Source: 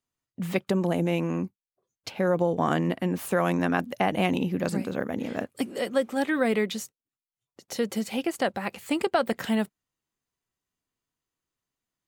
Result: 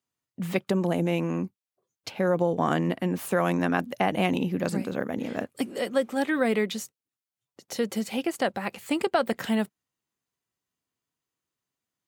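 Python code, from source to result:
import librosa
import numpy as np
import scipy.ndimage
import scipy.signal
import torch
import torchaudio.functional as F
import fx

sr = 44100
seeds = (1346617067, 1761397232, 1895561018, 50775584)

y = scipy.signal.sosfilt(scipy.signal.butter(2, 79.0, 'highpass', fs=sr, output='sos'), x)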